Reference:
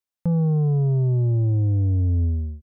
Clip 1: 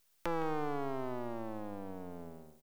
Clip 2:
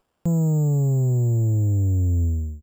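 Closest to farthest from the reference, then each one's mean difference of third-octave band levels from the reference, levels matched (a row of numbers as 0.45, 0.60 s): 2, 1; 6.5, 19.5 dB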